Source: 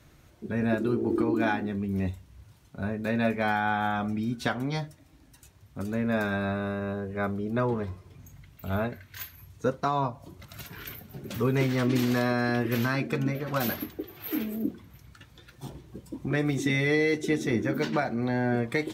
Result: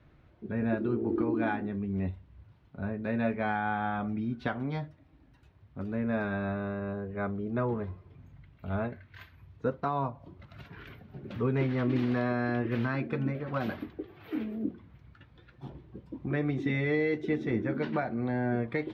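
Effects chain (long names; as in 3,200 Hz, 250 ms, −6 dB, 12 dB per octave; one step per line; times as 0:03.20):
high-frequency loss of the air 350 metres
level −2.5 dB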